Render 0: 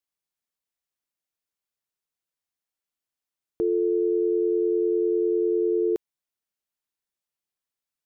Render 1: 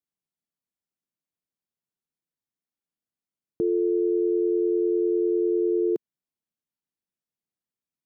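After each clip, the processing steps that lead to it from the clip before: peaking EQ 190 Hz +14.5 dB 2.4 oct; trim -8.5 dB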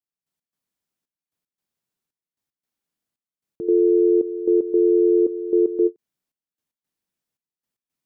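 trance gate "..x.xxxx" 114 bpm -12 dB; endings held to a fixed fall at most 580 dB/s; trim +7 dB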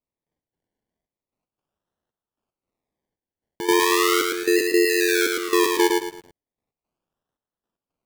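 decimation with a swept rate 27×, swing 60% 0.37 Hz; bit-crushed delay 110 ms, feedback 35%, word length 8-bit, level -3 dB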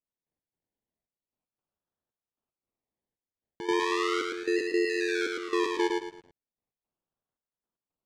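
distance through air 110 m; trim -8 dB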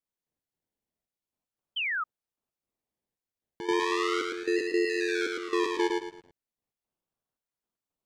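painted sound fall, 1.76–2.04 s, 1.2–3.2 kHz -30 dBFS

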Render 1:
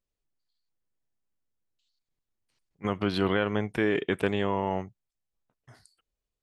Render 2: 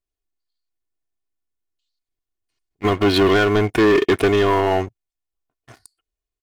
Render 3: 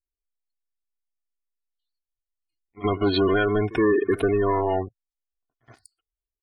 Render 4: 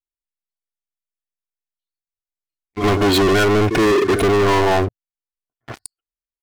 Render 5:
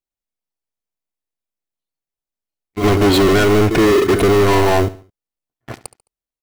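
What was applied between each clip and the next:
comb 2.8 ms, depth 67%; waveshaping leveller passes 3; trim +2.5 dB
spectral gate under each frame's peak -20 dB strong; pre-echo 71 ms -19.5 dB; trim -5 dB
waveshaping leveller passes 5
in parallel at -7 dB: sample-rate reducer 1.7 kHz, jitter 0%; on the sum: feedback delay 71 ms, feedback 37%, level -17.5 dB

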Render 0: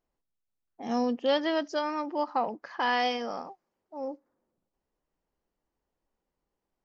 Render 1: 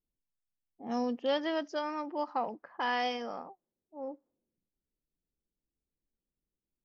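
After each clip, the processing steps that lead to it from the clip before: level-controlled noise filter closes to 300 Hz, open at -25.5 dBFS; dynamic bell 4.2 kHz, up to -5 dB, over -56 dBFS, Q 6.3; trim -4.5 dB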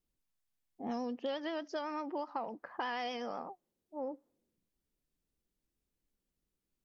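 compression, threshold -39 dBFS, peak gain reduction 12.5 dB; vibrato 8.1 Hz 55 cents; trim +4 dB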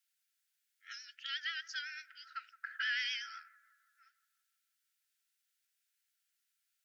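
brick-wall FIR high-pass 1.3 kHz; bucket-brigade echo 166 ms, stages 2048, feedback 60%, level -19 dB; trim +8 dB

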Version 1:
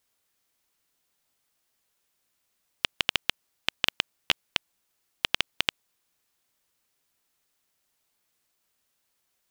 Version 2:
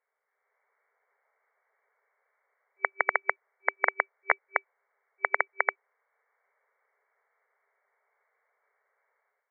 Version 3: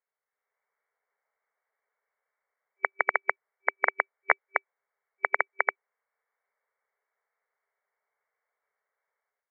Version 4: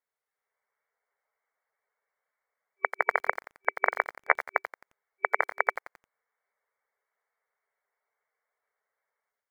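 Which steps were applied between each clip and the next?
FFT band-pass 390–2300 Hz; level rider gain up to 10 dB
upward expansion 1.5:1, over -43 dBFS; trim +2 dB
coarse spectral quantiser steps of 15 dB; bit-crushed delay 88 ms, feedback 35%, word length 7-bit, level -11.5 dB

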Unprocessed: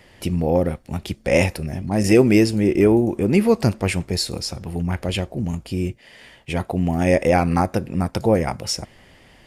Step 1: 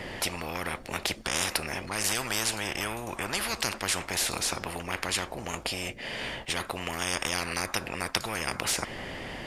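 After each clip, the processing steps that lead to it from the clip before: treble shelf 4.6 kHz -8.5 dB; spectrum-flattening compressor 10:1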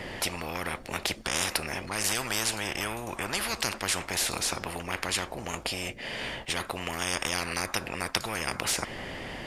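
no audible change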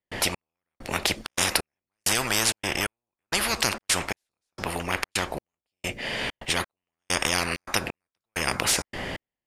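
trance gate ".xx....xxxx" 131 bpm -60 dB; trim +5.5 dB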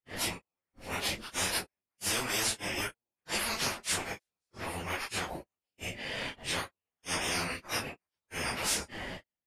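phase randomisation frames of 100 ms; trim -7 dB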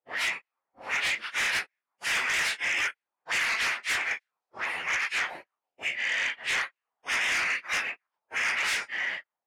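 auto-wah 630–2000 Hz, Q 2.6, up, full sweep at -37.5 dBFS; sine folder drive 8 dB, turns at -26.5 dBFS; trim +3.5 dB

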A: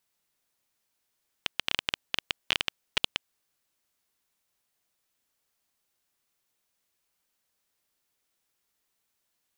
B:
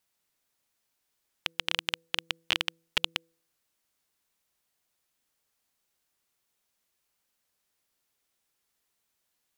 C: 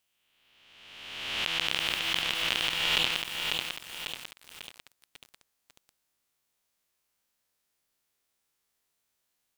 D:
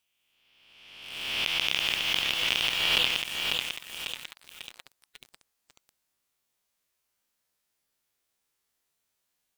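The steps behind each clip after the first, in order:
wow and flutter 16 cents; de-hum 165.2 Hz, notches 3
reverse spectral sustain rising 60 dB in 1.56 s; bit-crushed delay 546 ms, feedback 55%, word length 6-bit, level -3.5 dB; trim -3.5 dB
coarse spectral quantiser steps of 15 dB; in parallel at -9.5 dB: bit crusher 6-bit

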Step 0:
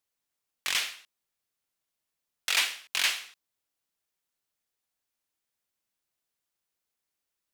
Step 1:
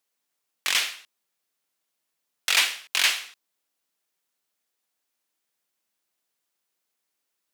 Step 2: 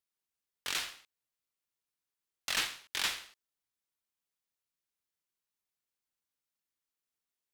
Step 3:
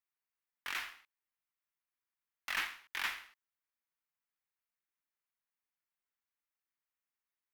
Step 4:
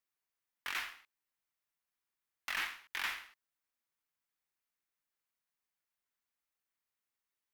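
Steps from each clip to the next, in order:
high-pass 180 Hz; trim +5 dB
ring modulator 690 Hz; trim -8.5 dB
graphic EQ 125/500/1000/2000/4000/8000 Hz -11/-7/+4/+6/-6/-9 dB; trim -4 dB
peak limiter -25.5 dBFS, peak gain reduction 4.5 dB; trim +1.5 dB

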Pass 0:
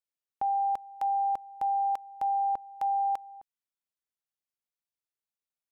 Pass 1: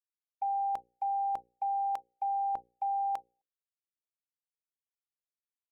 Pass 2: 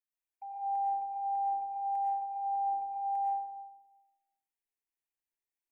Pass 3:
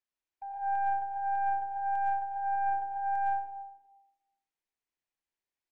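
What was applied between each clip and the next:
gate -32 dBFS, range -41 dB; hum notches 60/120/180/240/300/360/420/480/540 Hz; in parallel at +1 dB: compressor with a negative ratio -32 dBFS, ratio -0.5; on the sum: trim -7 dB
peak limiter -35 dBFS, peak gain reduction 11 dB; static phaser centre 840 Hz, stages 8; algorithmic reverb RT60 1.1 s, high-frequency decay 0.35×, pre-delay 75 ms, DRR -6 dB; trim -4 dB
tracing distortion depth 0.11 ms; distance through air 84 m; feedback delay 71 ms, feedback 59%, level -15.5 dB; trim +3 dB

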